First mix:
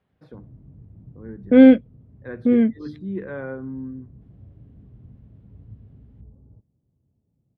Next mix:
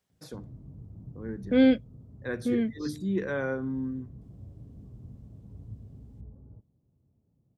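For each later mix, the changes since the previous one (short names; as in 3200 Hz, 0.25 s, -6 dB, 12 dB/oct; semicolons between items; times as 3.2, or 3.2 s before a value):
second voice -11.0 dB; master: remove air absorption 490 m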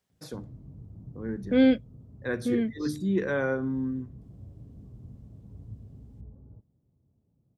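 reverb: on, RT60 0.40 s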